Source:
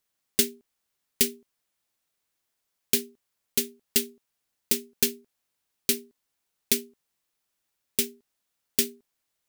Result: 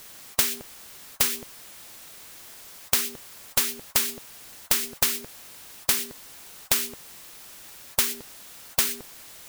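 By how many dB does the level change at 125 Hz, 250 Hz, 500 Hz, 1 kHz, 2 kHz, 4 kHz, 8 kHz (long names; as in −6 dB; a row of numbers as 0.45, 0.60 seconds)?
+3.5 dB, −6.5 dB, −4.0 dB, can't be measured, +6.5 dB, +2.5 dB, +3.0 dB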